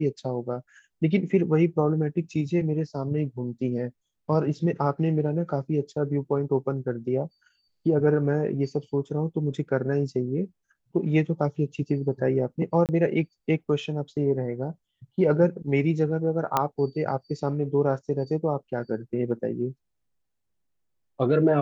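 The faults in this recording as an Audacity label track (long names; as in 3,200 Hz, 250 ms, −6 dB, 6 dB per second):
12.860000	12.890000	drop-out 28 ms
16.570000	16.570000	click −8 dBFS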